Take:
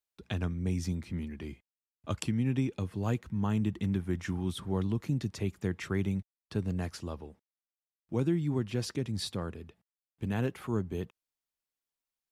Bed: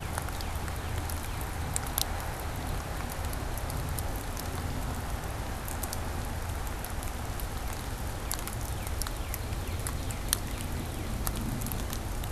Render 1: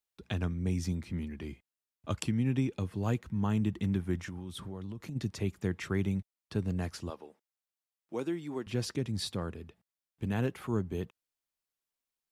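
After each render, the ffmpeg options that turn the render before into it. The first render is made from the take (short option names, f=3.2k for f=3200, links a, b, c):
-filter_complex "[0:a]asplit=3[a][b][c];[a]afade=t=out:st=4.23:d=0.02[d];[b]acompressor=threshold=-37dB:ratio=6:attack=3.2:release=140:knee=1:detection=peak,afade=t=in:st=4.23:d=0.02,afade=t=out:st=5.15:d=0.02[e];[c]afade=t=in:st=5.15:d=0.02[f];[d][e][f]amix=inputs=3:normalize=0,asettb=1/sr,asplit=3[g][h][i];[g]atrim=end=7.104[j];[h]atrim=start=7.1:end=8.67,asetpts=PTS-STARTPTS,afade=t=in:d=0.004:c=qsin,afade=t=out:st=1.566:d=0.004:c=qsin,highpass=360[k];[i]atrim=start=8.666[l];[j][k]acrossfade=d=0.004:c1=hsin:c2=qsin[m];[m][l]acrossfade=d=0.004:c1=qsin:c2=hsin"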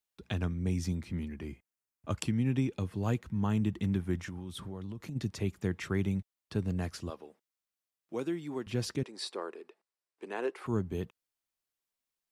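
-filter_complex "[0:a]asettb=1/sr,asplit=3[a][b][c];[a]atrim=end=1.344[d];[b]atrim=start=1.34:end=2.16,asetpts=PTS-STARTPTS,afade=t=in:d=0.004:c=qsin,afade=t=out:st=0.816:d=0.004:c=qsin,equalizer=f=3.7k:t=o:w=0.61:g=-7.5[e];[c]atrim=start=2.156[f];[d][e]acrossfade=d=0.004:c1=hsin:c2=qsin[g];[g][f]acrossfade=d=0.004:c1=qsin:c2=hsin,asettb=1/sr,asplit=3[h][i][j];[h]atrim=end=6.874[k];[i]atrim=start=6.87:end=8.35,asetpts=PTS-STARTPTS,afade=t=in:d=0.004:c=qsin,afade=t=out:st=1.476:d=0.004:c=qsin,bandreject=f=880:w=11[l];[j]atrim=start=8.346[m];[k][l]acrossfade=d=0.004:c1=hsin:c2=qsin[n];[n][m]acrossfade=d=0.004:c1=qsin:c2=hsin,asettb=1/sr,asplit=3[o][p][q];[o]atrim=end=9.034[r];[p]atrim=start=9.03:end=10.66,asetpts=PTS-STARTPTS,afade=t=in:d=0.004:c=qsin,afade=t=out:st=1.626:d=0.004:c=qsin,highpass=f=360:w=0.5412,highpass=f=360:w=1.3066,equalizer=f=380:t=q:w=4:g=6,equalizer=f=1k:t=q:w=4:g=4,equalizer=f=3.3k:t=q:w=4:g=-6,equalizer=f=6.6k:t=q:w=4:g=-6,lowpass=f=9.3k:w=0.5412,lowpass=f=9.3k:w=1.3066[s];[q]atrim=start=10.656[t];[r][s]acrossfade=d=0.004:c1=hsin:c2=qsin[u];[u][t]acrossfade=d=0.004:c1=qsin:c2=hsin"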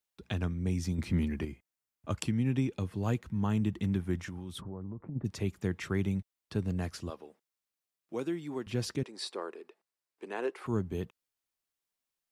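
-filter_complex "[0:a]asettb=1/sr,asplit=3[a][b][c];[a]atrim=end=0.984[d];[b]atrim=start=0.98:end=1.45,asetpts=PTS-STARTPTS,afade=t=in:d=0.004:c=qsin,afade=t=out:st=0.466:d=0.004:c=qsin,acontrast=81[e];[c]atrim=start=1.446[f];[d][e]acrossfade=d=0.004:c1=hsin:c2=qsin[g];[g][f]acrossfade=d=0.004:c1=qsin:c2=hsin,asplit=3[h][i][j];[h]afade=t=out:st=4.6:d=0.02[k];[i]lowpass=f=1.2k:w=0.5412,lowpass=f=1.2k:w=1.3066,afade=t=in:st=4.6:d=0.02,afade=t=out:st=5.24:d=0.02[l];[j]afade=t=in:st=5.24:d=0.02[m];[k][l][m]amix=inputs=3:normalize=0"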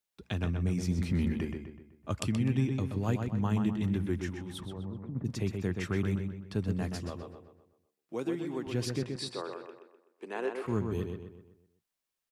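-filter_complex "[0:a]asplit=2[a][b];[b]adelay=126,lowpass=f=3.8k:p=1,volume=-5dB,asplit=2[c][d];[d]adelay=126,lowpass=f=3.8k:p=1,volume=0.45,asplit=2[e][f];[f]adelay=126,lowpass=f=3.8k:p=1,volume=0.45,asplit=2[g][h];[h]adelay=126,lowpass=f=3.8k:p=1,volume=0.45,asplit=2[i][j];[j]adelay=126,lowpass=f=3.8k:p=1,volume=0.45,asplit=2[k][l];[l]adelay=126,lowpass=f=3.8k:p=1,volume=0.45[m];[a][c][e][g][i][k][m]amix=inputs=7:normalize=0"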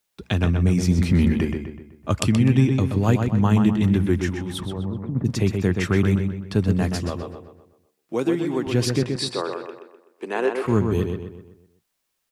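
-af "volume=11.5dB"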